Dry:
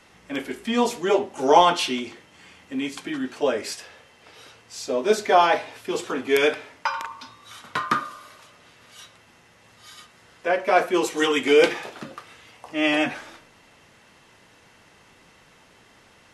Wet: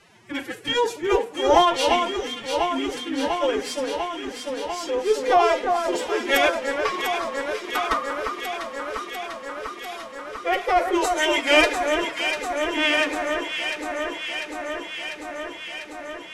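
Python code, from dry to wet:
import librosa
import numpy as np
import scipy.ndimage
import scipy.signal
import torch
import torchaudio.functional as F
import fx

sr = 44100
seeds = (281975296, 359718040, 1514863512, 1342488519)

y = fx.diode_clip(x, sr, knee_db=-3.5)
y = fx.pitch_keep_formants(y, sr, semitones=12.0)
y = fx.echo_alternate(y, sr, ms=348, hz=1800.0, feedback_pct=87, wet_db=-5.0)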